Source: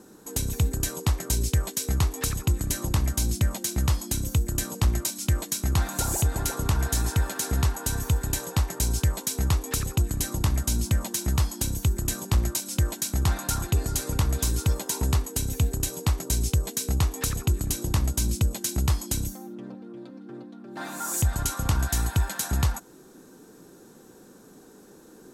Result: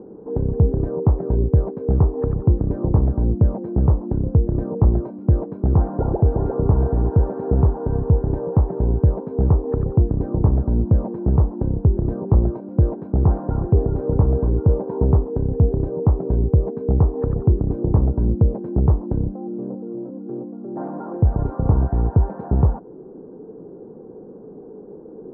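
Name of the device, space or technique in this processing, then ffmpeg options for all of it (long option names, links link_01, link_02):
under water: -af "lowpass=frequency=880:width=0.5412,lowpass=frequency=880:width=1.3066,equalizer=frequency=160:width_type=o:width=1.4:gain=4,equalizer=frequency=440:width_type=o:width=0.59:gain=10,volume=6dB"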